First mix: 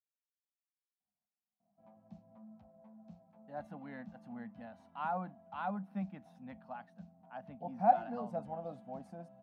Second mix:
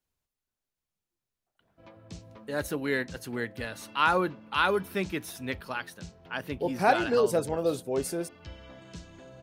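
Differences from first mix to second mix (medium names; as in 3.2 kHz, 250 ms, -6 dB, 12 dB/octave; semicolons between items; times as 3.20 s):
speech: entry -1.00 s; master: remove two resonant band-passes 390 Hz, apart 1.8 oct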